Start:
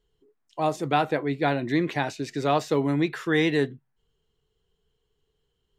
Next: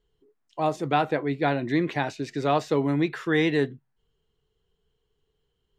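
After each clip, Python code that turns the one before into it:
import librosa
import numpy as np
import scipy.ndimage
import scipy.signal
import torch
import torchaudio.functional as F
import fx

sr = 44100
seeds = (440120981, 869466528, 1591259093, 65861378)

y = fx.high_shelf(x, sr, hz=6800.0, db=-8.0)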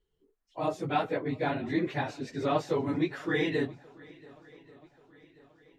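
y = fx.phase_scramble(x, sr, seeds[0], window_ms=50)
y = fx.echo_swing(y, sr, ms=1134, ratio=1.5, feedback_pct=45, wet_db=-23.5)
y = F.gain(torch.from_numpy(y), -5.5).numpy()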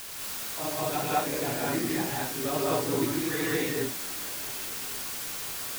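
y = fx.quant_dither(x, sr, seeds[1], bits=6, dither='triangular')
y = fx.rev_gated(y, sr, seeds[2], gate_ms=250, shape='rising', drr_db=-4.5)
y = F.gain(torch.from_numpy(y), -5.0).numpy()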